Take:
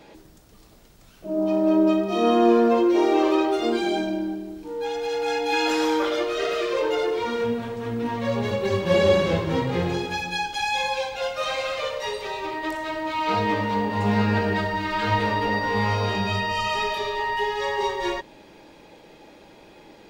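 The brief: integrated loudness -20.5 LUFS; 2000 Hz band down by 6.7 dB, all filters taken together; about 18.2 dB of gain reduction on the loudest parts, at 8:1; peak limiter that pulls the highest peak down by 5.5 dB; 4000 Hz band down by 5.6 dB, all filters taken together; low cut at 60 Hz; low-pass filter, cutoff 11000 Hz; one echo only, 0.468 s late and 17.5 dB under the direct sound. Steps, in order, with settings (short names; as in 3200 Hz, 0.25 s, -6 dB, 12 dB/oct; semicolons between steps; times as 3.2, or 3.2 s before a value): HPF 60 Hz; LPF 11000 Hz; bell 2000 Hz -7 dB; bell 4000 Hz -4.5 dB; compressor 8:1, threshold -34 dBFS; limiter -30 dBFS; echo 0.468 s -17.5 dB; gain +18 dB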